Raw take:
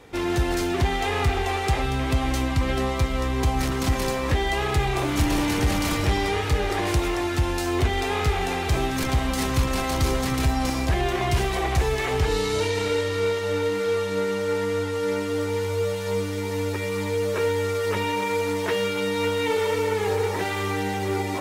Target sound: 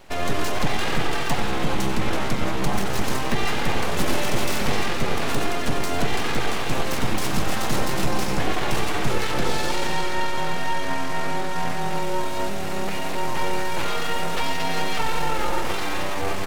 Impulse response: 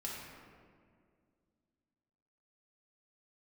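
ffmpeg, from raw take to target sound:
-filter_complex "[0:a]aeval=exprs='abs(val(0))':c=same,bandreject=f=60:t=h:w=6,bandreject=f=120:t=h:w=6,bandreject=f=180:t=h:w=6,atempo=1.3,asplit=2[s0][s1];[1:a]atrim=start_sample=2205,adelay=93[s2];[s1][s2]afir=irnorm=-1:irlink=0,volume=0.376[s3];[s0][s3]amix=inputs=2:normalize=0,volume=1.33"

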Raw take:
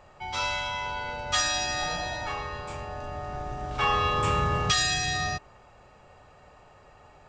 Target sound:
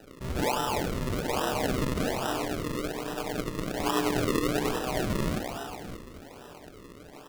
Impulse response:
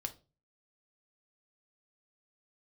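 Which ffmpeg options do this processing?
-filter_complex "[0:a]equalizer=f=350:t=o:w=0.53:g=13.5,bandreject=f=60:t=h:w=6,bandreject=f=120:t=h:w=6,bandreject=f=180:t=h:w=6,bandreject=f=240:t=h:w=6,bandreject=f=300:t=h:w=6,bandreject=f=360:t=h:w=6,bandreject=f=420:t=h:w=6,asplit=2[s0][s1];[s1]alimiter=limit=0.0668:level=0:latency=1,volume=0.841[s2];[s0][s2]amix=inputs=2:normalize=0,asettb=1/sr,asplit=3[s3][s4][s5];[s3]atrim=end=2.874[s6];[s4]atrim=start=2.87:end=4.87,asetpts=PTS-STARTPTS,afade=t=in:d=0.004:c=qsin,afade=t=out:st=1.996:d=0.004:c=qsin,tremolo=f=120:d=0.788[s7];[s5]atrim=start=4.866[s8];[s6][s7]acrossfade=d=0.004:c1=hsin:c2=qsin[s9];[s9][s8]acrossfade=d=0.004:c1=qsin:c2=hsin,highpass=f=150:t=q:w=0.5412,highpass=f=150:t=q:w=1.307,lowpass=f=2300:t=q:w=0.5176,lowpass=f=2300:t=q:w=0.7071,lowpass=f=2300:t=q:w=1.932,afreqshift=-51,aeval=exprs='val(0)*sin(2*PI*65*n/s)':c=same,flanger=delay=6.6:depth=1.6:regen=-31:speed=0.28:shape=triangular,asplit=8[s10][s11][s12][s13][s14][s15][s16][s17];[s11]adelay=286,afreqshift=59,volume=0.251[s18];[s12]adelay=572,afreqshift=118,volume=0.155[s19];[s13]adelay=858,afreqshift=177,volume=0.0966[s20];[s14]adelay=1144,afreqshift=236,volume=0.0596[s21];[s15]adelay=1430,afreqshift=295,volume=0.0372[s22];[s16]adelay=1716,afreqshift=354,volume=0.0229[s23];[s17]adelay=2002,afreqshift=413,volume=0.0143[s24];[s10][s18][s19][s20][s21][s22][s23][s24]amix=inputs=8:normalize=0[s25];[1:a]atrim=start_sample=2205,asetrate=24255,aresample=44100[s26];[s25][s26]afir=irnorm=-1:irlink=0,acrusher=samples=39:mix=1:aa=0.000001:lfo=1:lforange=39:lforate=1.2,volume=1.33"

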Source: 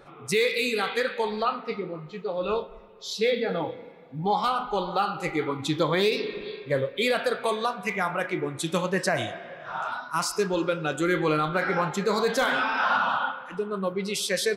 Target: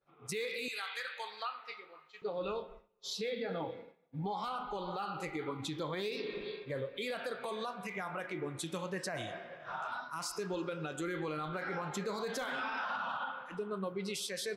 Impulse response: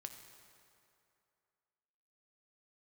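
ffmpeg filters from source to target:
-filter_complex "[0:a]agate=range=0.0224:threshold=0.0126:ratio=3:detection=peak,asettb=1/sr,asplit=3[s0][s1][s2];[s0]atrim=end=0.684[s3];[s1]atrim=start=0.68:end=2.22,asetpts=PTS-STARTPTS,afade=t=in:d=0.004:c=qsin,afade=t=out:st=1.536:d=0.004:c=qsin,highpass=1200[s4];[s2]atrim=start=2.216[s5];[s3][s4]acrossfade=d=0.004:c1=hsin:c2=qsin[s6];[s6][s5]acrossfade=d=0.004:c1=qsin:c2=hsin,alimiter=limit=0.0708:level=0:latency=1:release=129,volume=0.501"

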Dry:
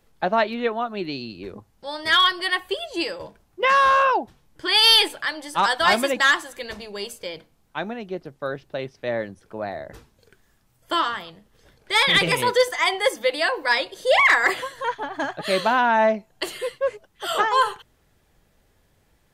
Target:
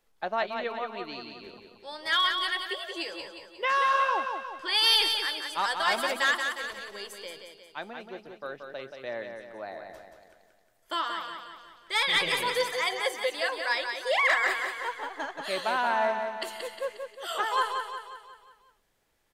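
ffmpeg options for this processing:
-filter_complex "[0:a]equalizer=f=87:w=0.36:g=-13,asplit=2[s0][s1];[s1]aecho=0:1:179|358|537|716|895|1074:0.501|0.251|0.125|0.0626|0.0313|0.0157[s2];[s0][s2]amix=inputs=2:normalize=0,volume=0.422"

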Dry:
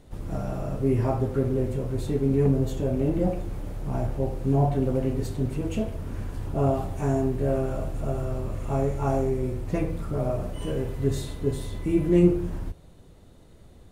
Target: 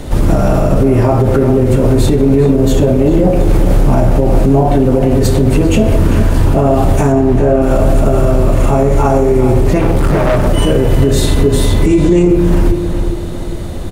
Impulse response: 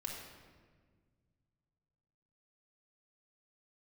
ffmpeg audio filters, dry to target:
-filter_complex "[0:a]acrossover=split=200[s0][s1];[s0]asoftclip=type=tanh:threshold=0.0501[s2];[s2][s1]amix=inputs=2:normalize=0,acontrast=29,asettb=1/sr,asplit=3[s3][s4][s5];[s3]atrim=end=7.124[s6];[s4]atrim=start=7.12:end=7.62,asetpts=PTS-STARTPTS,afade=t=in:d=0.004:c=qsin,afade=t=out:st=0.496:d=0.004:c=qsin,highshelf=f=5000:g=-11.5[s7];[s5]atrim=start=7.616[s8];[s6][s7]acrossfade=d=0.004:c1=hsin:c2=qsin[s9];[s9][s8]acrossfade=d=0.004:c1=qsin:c2=hsin,acompressor=threshold=0.0562:ratio=6,asettb=1/sr,asplit=3[s10][s11][s12];[s10]atrim=end=9.794[s13];[s11]atrim=start=9.79:end=10.47,asetpts=PTS-STARTPTS,afade=t=in:d=0.004:c=qsin,afade=t=out:st=0.676:d=0.004:c=qsin,asoftclip=type=hard:threshold=0.0237[s14];[s12]atrim=start=10.466[s15];[s13][s14]acrossfade=d=0.004:c1=hsin:c2=qsin[s16];[s16][s15]acrossfade=d=0.004:c1=qsin:c2=hsin,asettb=1/sr,asplit=3[s17][s18][s19];[s17]atrim=end=11.864[s20];[s18]atrim=start=11.86:end=12.28,asetpts=PTS-STARTPTS,afade=t=in:d=0.004:c=qsin,afade=t=out:st=0.416:d=0.004:c=qsin,lowpass=f=7000:t=q:w=3.1[s21];[s19]atrim=start=12.276[s22];[s20][s21]acrossfade=d=0.004:c1=hsin:c2=qsin[s23];[s23][s22]acrossfade=d=0.004:c1=qsin:c2=hsin,asplit=2[s24][s25];[s25]adelay=398,lowpass=f=4100:p=1,volume=0.282,asplit=2[s26][s27];[s27]adelay=398,lowpass=f=4100:p=1,volume=0.49,asplit=2[s28][s29];[s29]adelay=398,lowpass=f=4100:p=1,volume=0.49,asplit=2[s30][s31];[s31]adelay=398,lowpass=f=4100:p=1,volume=0.49,asplit=2[s32][s33];[s33]adelay=398,lowpass=f=4100:p=1,volume=0.49[s34];[s24][s26][s28][s30][s32][s34]amix=inputs=6:normalize=0,asplit=2[s35][s36];[1:a]atrim=start_sample=2205[s37];[s36][s37]afir=irnorm=-1:irlink=0,volume=0.376[s38];[s35][s38]amix=inputs=2:normalize=0,alimiter=level_in=11.9:limit=0.891:release=50:level=0:latency=1,volume=0.891"

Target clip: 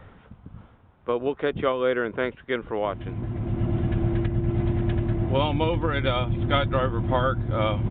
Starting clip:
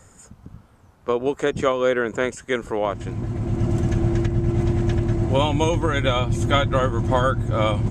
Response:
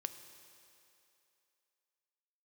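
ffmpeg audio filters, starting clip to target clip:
-af "areverse,acompressor=mode=upward:threshold=0.0224:ratio=2.5,areverse,aresample=8000,aresample=44100,volume=0.668"

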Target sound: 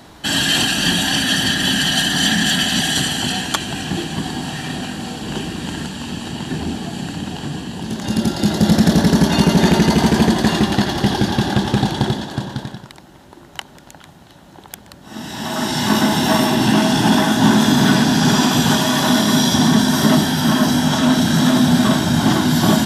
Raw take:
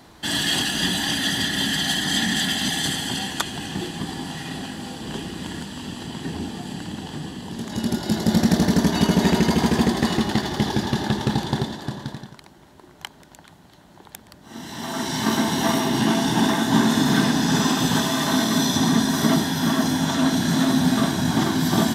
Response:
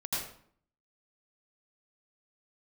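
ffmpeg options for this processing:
-af "acontrast=56,asetrate=42336,aresample=44100"

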